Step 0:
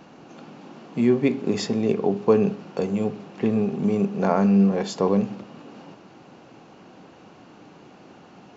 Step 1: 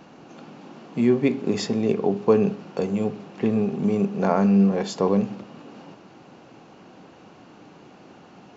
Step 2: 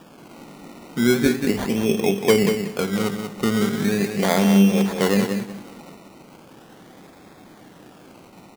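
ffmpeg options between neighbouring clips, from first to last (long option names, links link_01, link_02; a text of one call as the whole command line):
ffmpeg -i in.wav -af anull out.wav
ffmpeg -i in.wav -filter_complex "[0:a]acrusher=samples=21:mix=1:aa=0.000001:lfo=1:lforange=12.6:lforate=0.38,asplit=2[link_01][link_02];[link_02]aecho=0:1:186|372|558:0.447|0.0804|0.0145[link_03];[link_01][link_03]amix=inputs=2:normalize=0,volume=1dB" out.wav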